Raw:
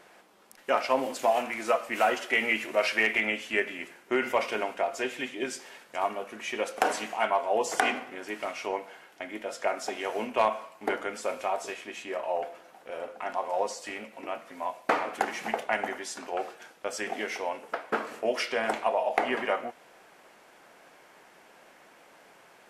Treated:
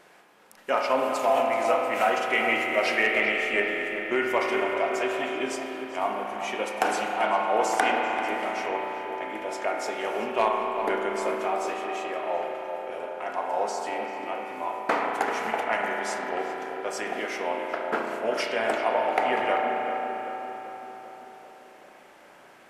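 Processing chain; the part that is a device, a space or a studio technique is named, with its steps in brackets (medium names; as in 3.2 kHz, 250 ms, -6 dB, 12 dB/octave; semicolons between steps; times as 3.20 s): dub delay into a spring reverb (filtered feedback delay 390 ms, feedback 63%, low-pass 1.8 kHz, level -8 dB; spring tank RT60 3.4 s, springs 34 ms, chirp 70 ms, DRR 1 dB)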